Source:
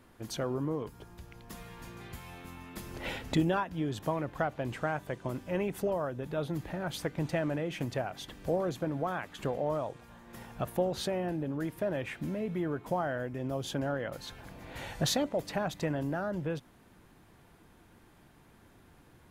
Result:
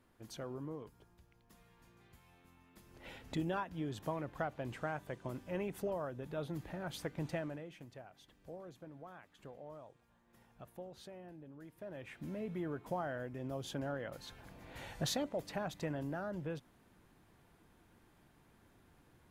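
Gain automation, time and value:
0.74 s -11 dB
1.37 s -18 dB
2.85 s -18 dB
3.6 s -7 dB
7.33 s -7 dB
7.84 s -19 dB
11.65 s -19 dB
12.37 s -7 dB

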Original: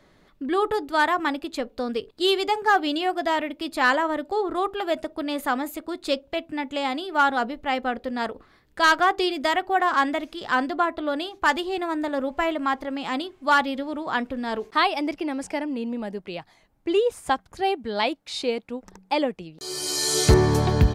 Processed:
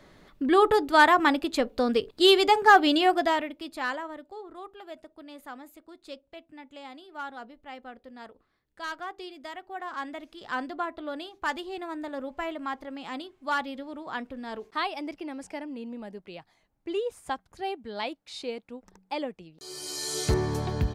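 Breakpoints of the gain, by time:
3.14 s +3 dB
3.52 s -6.5 dB
4.42 s -17.5 dB
9.6 s -17.5 dB
10.55 s -9 dB

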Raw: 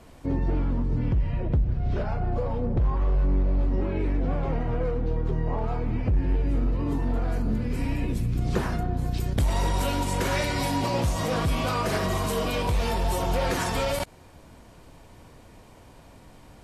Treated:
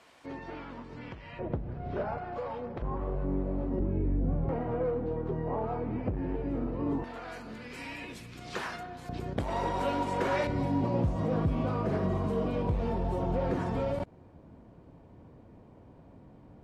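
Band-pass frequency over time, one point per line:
band-pass, Q 0.54
2400 Hz
from 1.39 s 690 Hz
from 2.18 s 1700 Hz
from 2.82 s 390 Hz
from 3.79 s 130 Hz
from 4.49 s 500 Hz
from 7.04 s 2600 Hz
from 9.09 s 630 Hz
from 10.47 s 210 Hz

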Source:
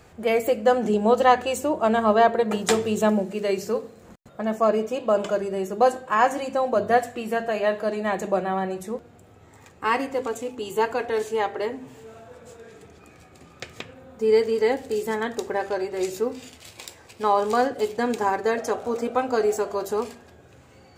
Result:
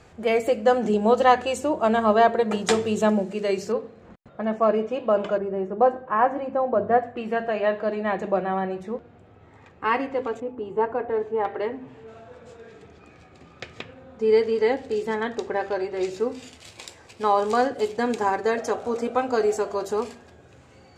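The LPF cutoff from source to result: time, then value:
7900 Hz
from 3.72 s 3100 Hz
from 5.38 s 1400 Hz
from 7.17 s 3100 Hz
from 10.4 s 1200 Hz
from 11.45 s 2700 Hz
from 12.08 s 4800 Hz
from 16.2 s 8600 Hz

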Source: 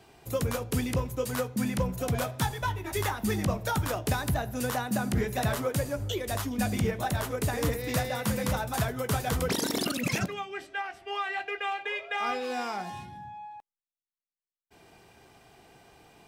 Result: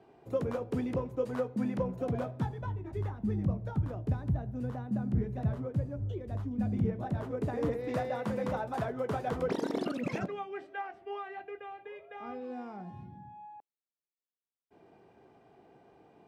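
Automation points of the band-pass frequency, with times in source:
band-pass, Q 0.7
1.91 s 390 Hz
3.03 s 120 Hz
6.52 s 120 Hz
7.94 s 460 Hz
10.78 s 460 Hz
11.71 s 140 Hz
12.95 s 140 Hz
13.54 s 360 Hz

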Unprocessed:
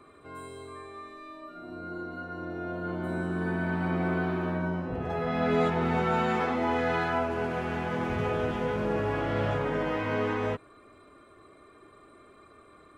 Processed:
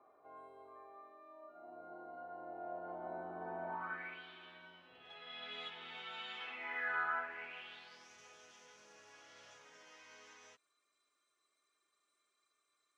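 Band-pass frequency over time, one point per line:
band-pass, Q 4.8
3.68 s 750 Hz
4.22 s 3300 Hz
6.37 s 3300 Hz
7.07 s 1300 Hz
8.1 s 6100 Hz

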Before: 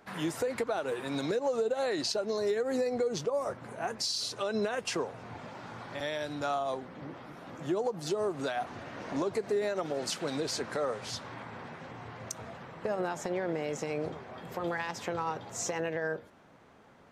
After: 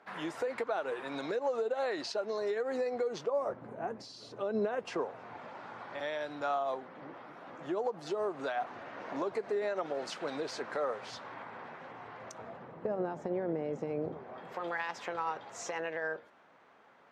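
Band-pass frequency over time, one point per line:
band-pass, Q 0.53
3.22 s 1100 Hz
3.67 s 330 Hz
4.49 s 330 Hz
5.23 s 1000 Hz
12.22 s 1000 Hz
12.89 s 290 Hz
14.08 s 290 Hz
14.59 s 1400 Hz

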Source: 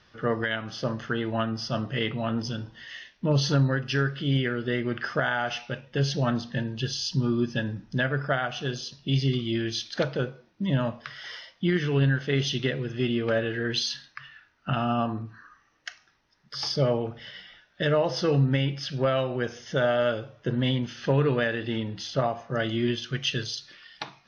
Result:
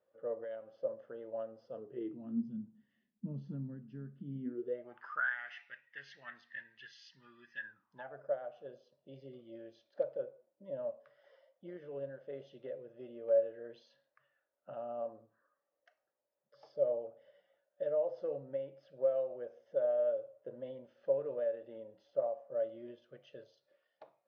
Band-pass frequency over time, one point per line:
band-pass, Q 12
1.63 s 540 Hz
2.51 s 210 Hz
4.4 s 210 Hz
4.73 s 520 Hz
5.35 s 1900 Hz
7.58 s 1900 Hz
8.26 s 560 Hz

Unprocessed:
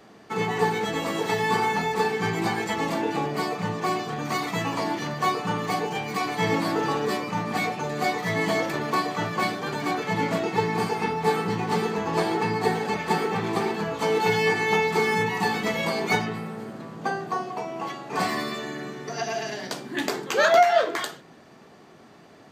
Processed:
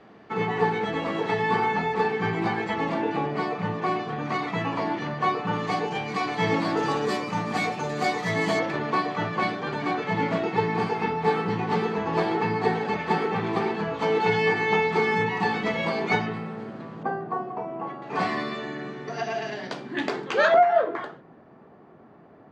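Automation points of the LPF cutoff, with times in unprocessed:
2900 Hz
from 5.53 s 4800 Hz
from 6.77 s 8200 Hz
from 8.59 s 3500 Hz
from 17.03 s 1300 Hz
from 18.02 s 3400 Hz
from 20.54 s 1300 Hz

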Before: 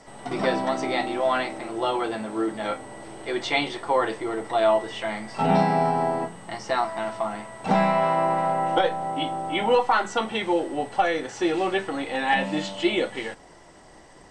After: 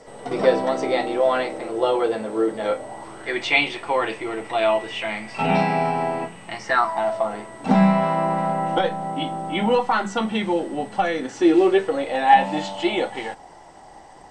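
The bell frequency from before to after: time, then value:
bell +12.5 dB 0.46 oct
2.74 s 480 Hz
3.43 s 2500 Hz
6.59 s 2500 Hz
6.92 s 930 Hz
7.82 s 200 Hz
11.07 s 200 Hz
12.37 s 810 Hz

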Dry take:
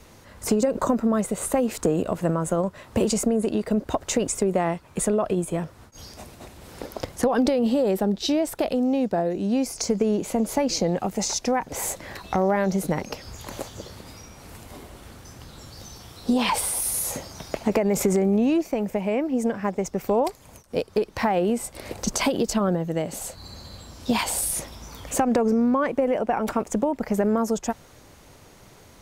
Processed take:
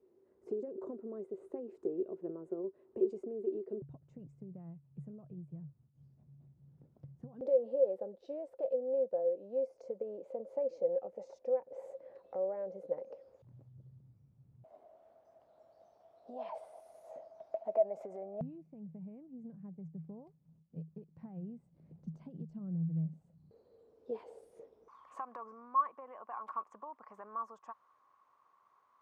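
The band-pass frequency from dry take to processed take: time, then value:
band-pass, Q 18
380 Hz
from 3.82 s 140 Hz
from 7.41 s 530 Hz
from 13.42 s 130 Hz
from 14.64 s 650 Hz
from 18.41 s 160 Hz
from 23.51 s 450 Hz
from 24.88 s 1100 Hz

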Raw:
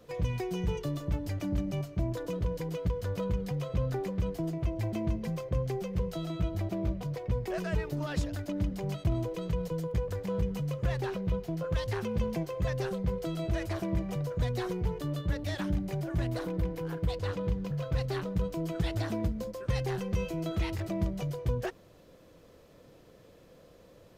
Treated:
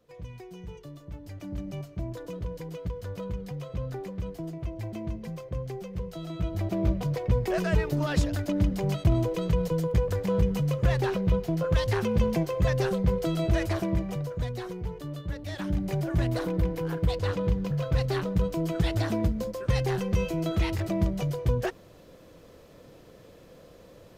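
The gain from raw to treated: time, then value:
1.05 s -10.5 dB
1.68 s -3 dB
6.13 s -3 dB
6.89 s +6.5 dB
13.63 s +6.5 dB
14.65 s -3 dB
15.44 s -3 dB
15.9 s +5 dB

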